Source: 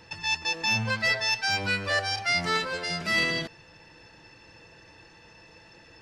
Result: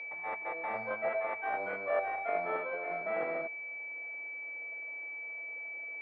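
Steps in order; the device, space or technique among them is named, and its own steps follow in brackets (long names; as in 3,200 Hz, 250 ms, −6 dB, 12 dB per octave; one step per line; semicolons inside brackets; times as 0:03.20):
toy sound module (linearly interpolated sample-rate reduction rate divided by 6×; switching amplifier with a slow clock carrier 2,300 Hz; loudspeaker in its box 570–4,600 Hz, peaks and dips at 650 Hz +8 dB, 960 Hz −5 dB, 2,800 Hz −5 dB)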